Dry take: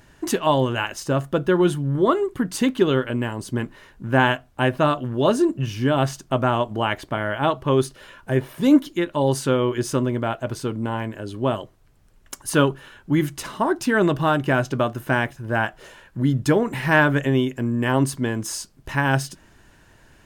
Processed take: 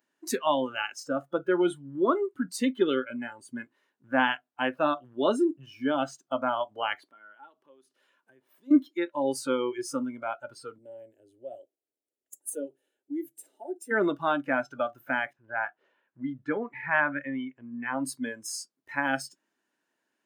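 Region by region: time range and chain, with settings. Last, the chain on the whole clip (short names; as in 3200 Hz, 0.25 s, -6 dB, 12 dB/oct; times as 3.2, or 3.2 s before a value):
7.08–8.71 compressor 2.5:1, threshold -39 dBFS + bell 83 Hz -9.5 dB 1.3 oct
10.78–13.91 band shelf 2800 Hz -9 dB 2.4 oct + compressor 2:1, threshold -21 dBFS + fixed phaser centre 440 Hz, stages 4
15.33–18.04 LPF 2600 Hz + dynamic EQ 360 Hz, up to -5 dB, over -30 dBFS, Q 0.74
whole clip: Chebyshev high-pass 250 Hz, order 3; spectral noise reduction 19 dB; gain -5 dB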